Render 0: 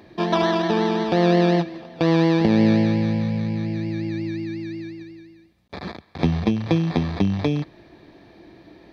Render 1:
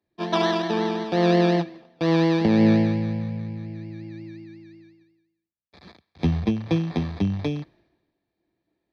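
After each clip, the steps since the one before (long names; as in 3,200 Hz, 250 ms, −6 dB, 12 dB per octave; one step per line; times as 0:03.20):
multiband upward and downward expander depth 100%
level −3 dB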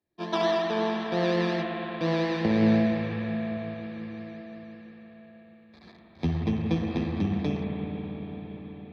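convolution reverb RT60 5.8 s, pre-delay 56 ms, DRR −1.5 dB
level −5.5 dB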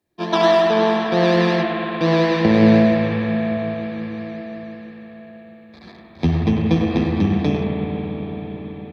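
far-end echo of a speakerphone 100 ms, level −7 dB
level +9 dB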